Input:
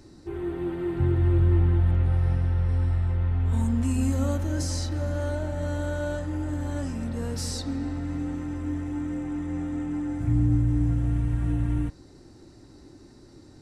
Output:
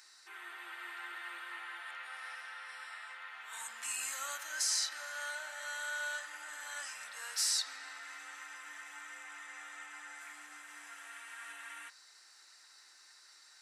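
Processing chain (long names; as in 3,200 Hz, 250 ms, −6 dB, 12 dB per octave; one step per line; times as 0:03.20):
four-pole ladder high-pass 1,200 Hz, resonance 30%
high-shelf EQ 5,000 Hz +4.5 dB
level +7.5 dB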